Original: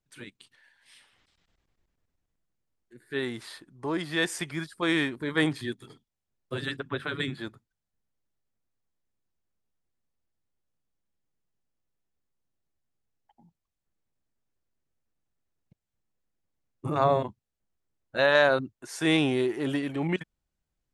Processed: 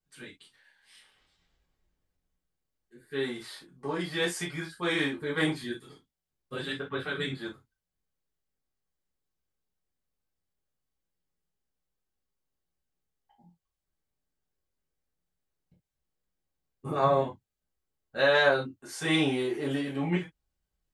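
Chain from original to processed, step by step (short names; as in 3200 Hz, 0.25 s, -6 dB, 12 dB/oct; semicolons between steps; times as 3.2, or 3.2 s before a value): non-linear reverb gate 90 ms falling, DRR -6 dB; gain -8 dB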